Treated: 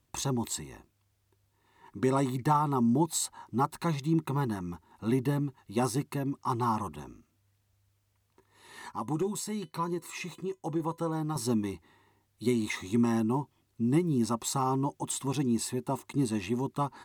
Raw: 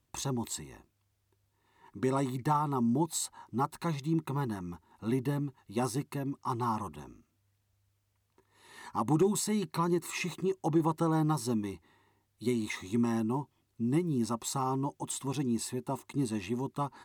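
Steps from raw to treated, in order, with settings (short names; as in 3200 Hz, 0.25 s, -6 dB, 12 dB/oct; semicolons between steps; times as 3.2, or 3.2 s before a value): 8.92–11.36 resonator 500 Hz, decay 0.17 s, harmonics all, mix 60%; gain +3 dB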